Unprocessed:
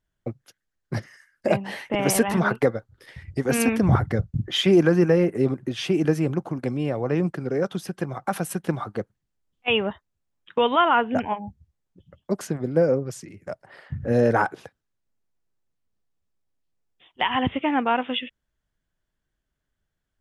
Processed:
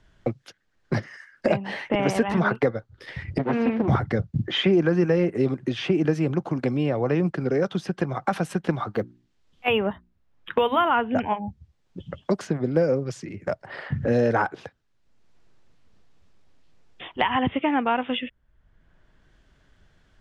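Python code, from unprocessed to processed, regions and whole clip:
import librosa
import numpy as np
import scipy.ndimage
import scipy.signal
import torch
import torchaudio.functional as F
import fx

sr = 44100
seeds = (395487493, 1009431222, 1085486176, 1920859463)

y = fx.chain(x, sr, fx.lower_of_two(delay_ms=8.5),
    fx.highpass(hz=170.0, slope=12),
    fx.spacing_loss(db_at_10k=43), at=(3.38, 3.88))
y = fx.chain(y, sr, fx.hum_notches(base_hz=60, count=6),
    fx.resample_bad(factor=3, down='none', up='hold'), at=(8.93, 10.91))
y = scipy.signal.sosfilt(scipy.signal.butter(2, 5000.0, 'lowpass', fs=sr, output='sos'), y)
y = fx.band_squash(y, sr, depth_pct=70)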